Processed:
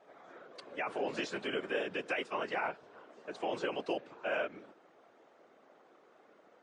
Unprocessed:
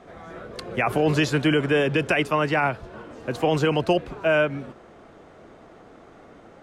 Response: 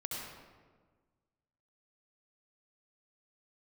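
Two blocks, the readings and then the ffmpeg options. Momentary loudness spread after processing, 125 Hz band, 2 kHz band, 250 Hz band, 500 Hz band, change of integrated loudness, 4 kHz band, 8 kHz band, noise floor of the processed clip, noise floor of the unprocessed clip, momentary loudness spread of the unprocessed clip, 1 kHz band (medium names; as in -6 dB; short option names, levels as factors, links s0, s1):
16 LU, -29.5 dB, -13.0 dB, -18.5 dB, -14.0 dB, -14.5 dB, -12.5 dB, under -15 dB, -64 dBFS, -49 dBFS, 17 LU, -12.5 dB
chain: -af "afftfilt=real='hypot(re,im)*cos(2*PI*random(0))':imag='hypot(re,im)*sin(2*PI*random(1))':win_size=512:overlap=0.75,highpass=340,lowpass=7300,volume=0.473" -ar 22050 -c:a libmp3lame -b:a 48k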